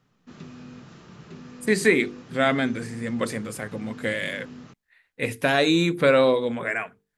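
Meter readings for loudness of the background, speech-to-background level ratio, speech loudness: -43.5 LUFS, 20.0 dB, -23.5 LUFS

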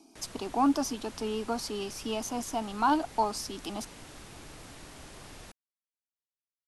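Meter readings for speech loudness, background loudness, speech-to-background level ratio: -31.5 LUFS, -48.0 LUFS, 16.5 dB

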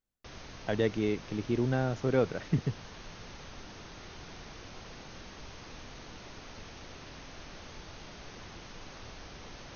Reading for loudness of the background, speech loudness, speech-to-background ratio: -47.5 LUFS, -31.5 LUFS, 16.0 dB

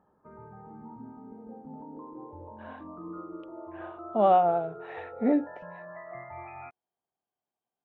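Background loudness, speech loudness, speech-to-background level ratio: -44.0 LUFS, -25.5 LUFS, 18.5 dB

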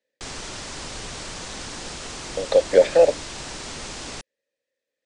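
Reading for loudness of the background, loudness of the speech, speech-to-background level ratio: -33.5 LUFS, -18.5 LUFS, 15.0 dB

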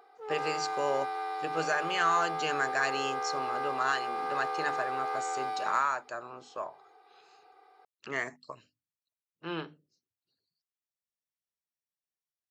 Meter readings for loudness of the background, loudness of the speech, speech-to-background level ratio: -34.5 LUFS, -33.5 LUFS, 1.0 dB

